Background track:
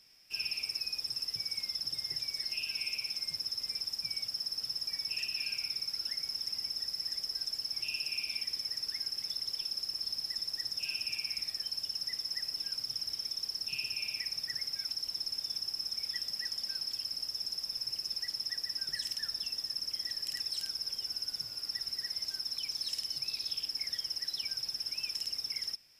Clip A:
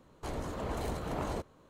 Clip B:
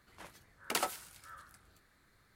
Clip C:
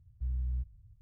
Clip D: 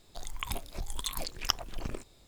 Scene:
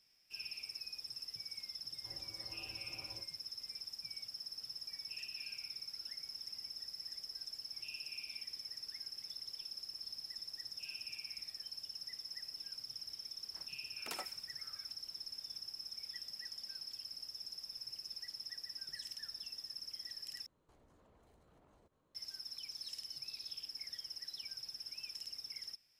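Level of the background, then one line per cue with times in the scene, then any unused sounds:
background track -10 dB
1.81 add A -11 dB + resonator 110 Hz, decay 0.23 s, harmonics odd, mix 90%
13.36 add B -11.5 dB
20.46 replace with A -16.5 dB + compressor 16:1, threshold -47 dBFS
not used: C, D

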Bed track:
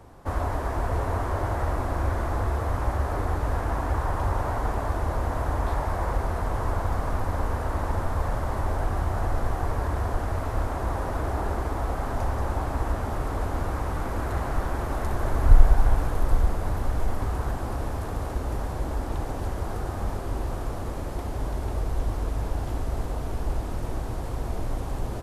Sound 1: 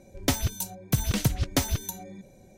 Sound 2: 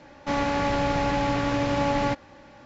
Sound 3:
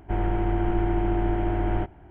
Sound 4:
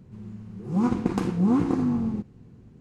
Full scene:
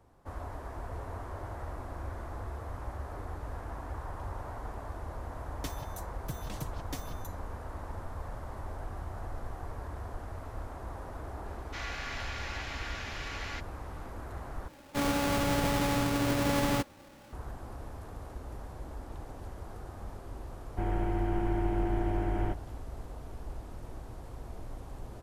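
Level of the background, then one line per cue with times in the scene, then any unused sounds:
bed track -13.5 dB
5.36 add 1 -17 dB + comb 6.5 ms, depth 53%
11.46 add 2 -6.5 dB + steep high-pass 1300 Hz
14.68 replace with 2 -9 dB + half-waves squared off
20.68 add 3 -6 dB
not used: 4

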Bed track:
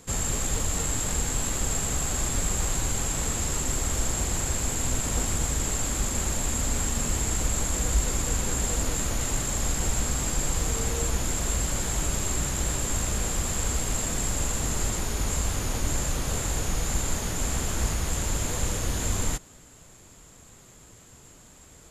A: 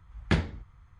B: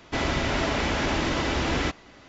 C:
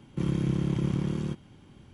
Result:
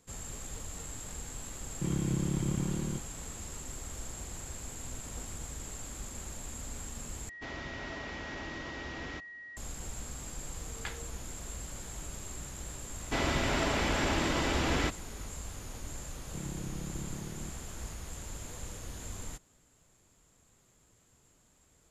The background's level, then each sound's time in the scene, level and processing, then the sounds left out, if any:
bed track -15 dB
1.64 add C -4.5 dB
7.29 replace with B -16.5 dB + whine 1900 Hz -28 dBFS
10.54 add A -9 dB + HPF 920 Hz
12.99 add B -4.5 dB
16.17 add C -13.5 dB

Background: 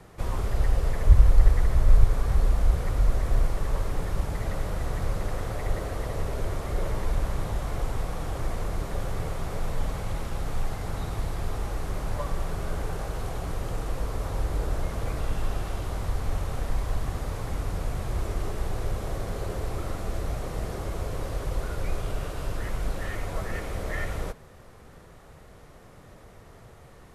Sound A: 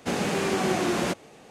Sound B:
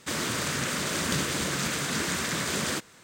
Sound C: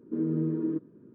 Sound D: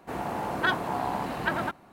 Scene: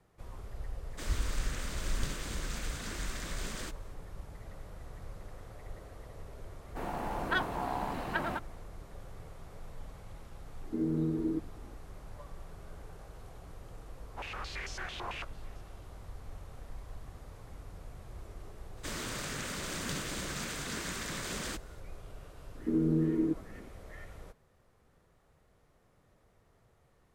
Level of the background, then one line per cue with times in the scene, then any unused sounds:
background -17.5 dB
0.91 add B -13 dB
6.68 add D -5.5 dB
10.61 add C -3 dB
14.11 add A -2 dB + stepped band-pass 9 Hz 960–5500 Hz
18.77 add B -9.5 dB
22.55 add C

